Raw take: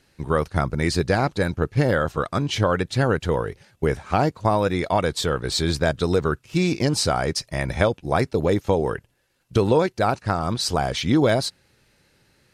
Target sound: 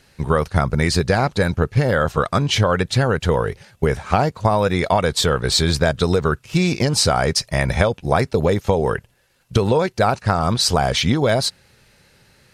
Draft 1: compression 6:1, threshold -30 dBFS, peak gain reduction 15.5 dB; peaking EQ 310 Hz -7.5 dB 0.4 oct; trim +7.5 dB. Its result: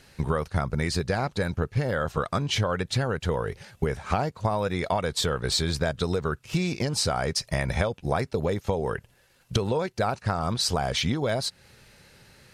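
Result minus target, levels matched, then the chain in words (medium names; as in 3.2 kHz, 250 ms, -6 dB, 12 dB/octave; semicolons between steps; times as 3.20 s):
compression: peak gain reduction +9 dB
compression 6:1, threshold -19 dBFS, peak gain reduction 6.5 dB; peaking EQ 310 Hz -7.5 dB 0.4 oct; trim +7.5 dB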